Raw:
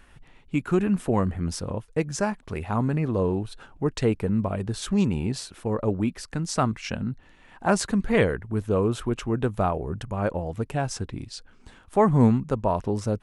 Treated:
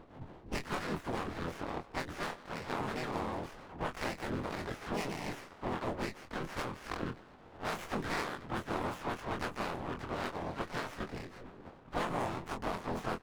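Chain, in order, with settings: spectral peaks clipped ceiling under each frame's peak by 28 dB; band-stop 510 Hz, Q 12; level-controlled noise filter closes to 670 Hz, open at -20.5 dBFS; compression 3:1, threshold -40 dBFS, peak gain reduction 20 dB; harmony voices -4 st -2 dB, +3 st -2 dB, +12 st -12 dB; doubling 24 ms -6.5 dB; speakerphone echo 160 ms, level -18 dB; sliding maximum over 9 samples; trim -1.5 dB

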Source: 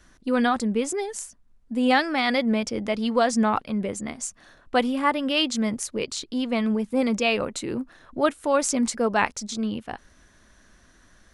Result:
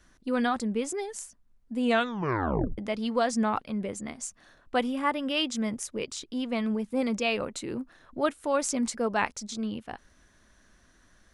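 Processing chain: 1.83 s: tape stop 0.95 s; 4.76–6.51 s: band-stop 4.3 kHz, Q 9.2; trim -5 dB

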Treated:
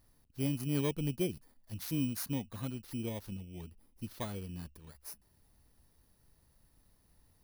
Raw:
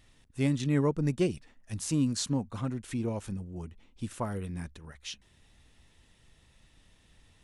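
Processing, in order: bit-reversed sample order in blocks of 16 samples; trim -6 dB

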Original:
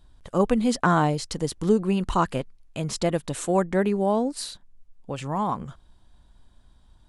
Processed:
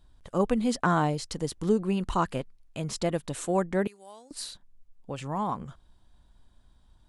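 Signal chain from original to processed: 3.87–4.31 s: differentiator; trim -4 dB

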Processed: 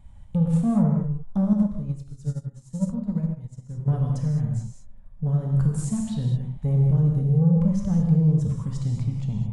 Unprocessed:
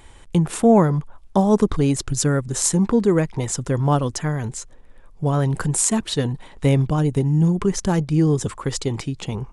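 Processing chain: FFT filter 200 Hz 0 dB, 400 Hz -30 dB, 600 Hz -12 dB, 1.6 kHz -21 dB; saturation -18 dBFS, distortion -15 dB; gated-style reverb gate 240 ms flat, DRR 0 dB; 1.53–3.88 s: upward expansion 2.5:1, over -30 dBFS

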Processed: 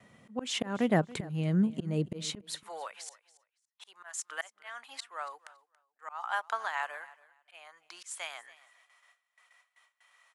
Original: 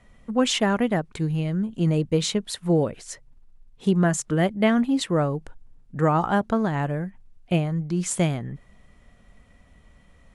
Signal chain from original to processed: high-pass 110 Hz 24 dB/octave, from 2.56 s 930 Hz; gate with hold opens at -54 dBFS; slow attack 398 ms; feedback delay 281 ms, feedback 18%, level -20 dB

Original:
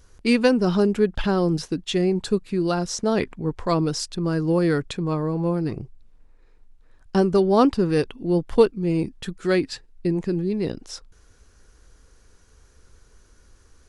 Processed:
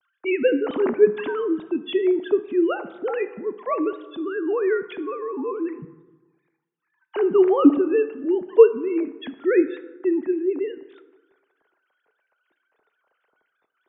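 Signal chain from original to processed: formants replaced by sine waves; reverberation RT60 1.2 s, pre-delay 3 ms, DRR 11 dB

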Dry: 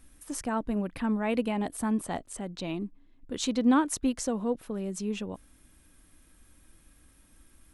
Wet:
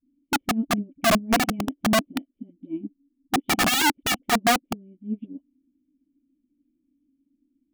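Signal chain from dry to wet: cascade formant filter i; peaking EQ 250 Hz +11 dB 1 oct; saturation -9.5 dBFS, distortion -17 dB; dynamic bell 490 Hz, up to +5 dB, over -46 dBFS, Q 3.2; small resonant body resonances 310/560 Hz, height 13 dB, ringing for 20 ms; phase dispersion highs, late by 59 ms, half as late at 400 Hz; integer overflow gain 13 dB; upward expansion 2.5:1, over -28 dBFS

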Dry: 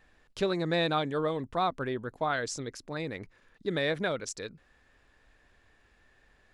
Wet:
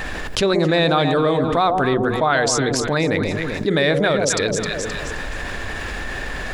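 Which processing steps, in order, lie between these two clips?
hum notches 60/120/180/240/300/360/420/480 Hz; echo whose repeats swap between lows and highs 131 ms, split 830 Hz, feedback 52%, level -7 dB; level flattener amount 70%; trim +9 dB

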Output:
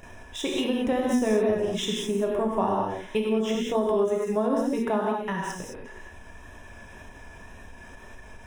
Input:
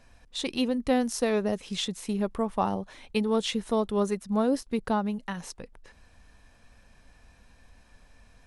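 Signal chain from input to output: median filter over 3 samples; 0.92–1.68 s: bass shelf 230 Hz +10.5 dB; 4.72–5.23 s: high-pass 170 Hz; gated-style reverb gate 240 ms flat, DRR -2.5 dB; gate with hold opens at -49 dBFS; Butterworth band-stop 4.4 kHz, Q 3; wow and flutter 25 cents; 3.29–3.75 s: fifteen-band graphic EQ 1 kHz -10 dB, 4 kHz -6 dB, 10 kHz -7 dB; upward compressor, threshold -36 dBFS; small resonant body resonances 380/630/930/1700 Hz, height 9 dB; compression 2.5:1, threshold -23 dBFS, peak gain reduction 9 dB; endings held to a fixed fall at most 180 dB/s

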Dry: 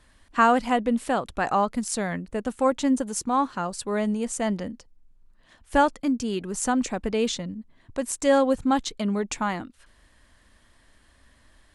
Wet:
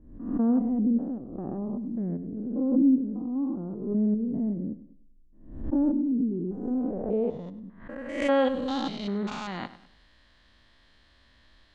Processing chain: spectrogram pixelated in time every 200 ms; low-pass sweep 300 Hz -> 4.1 kHz, 6.46–8.73 s; bucket-brigade echo 100 ms, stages 4096, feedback 35%, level -15 dB; swell ahead of each attack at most 79 dB/s; trim -2 dB

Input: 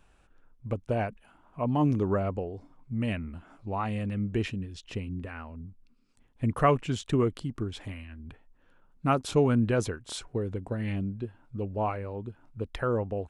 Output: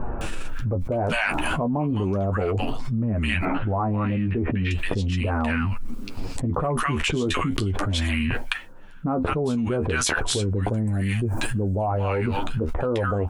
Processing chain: 10.49–11.66 s: resonant high shelf 5.3 kHz +10 dB, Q 1.5; flange 0.36 Hz, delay 8.1 ms, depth 5.3 ms, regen +30%; 3.24–4.50 s: distance through air 410 m; 8.26–9.43 s: dip -19.5 dB, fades 0.27 s; bands offset in time lows, highs 210 ms, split 1.2 kHz; level flattener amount 100%

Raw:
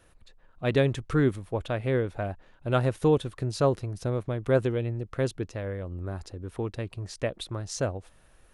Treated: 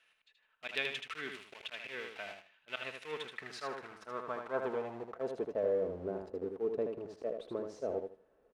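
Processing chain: peaking EQ 110 Hz -8 dB 0.3 oct; comb 4.6 ms, depth 33%; slow attack 108 ms; in parallel at -11 dB: companded quantiser 2-bit; on the sum: band-pass sweep 2.6 kHz -> 450 Hz, 2.90–5.91 s; on a send: feedback delay 78 ms, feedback 21%, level -5.5 dB; on the sum: trim +1 dB

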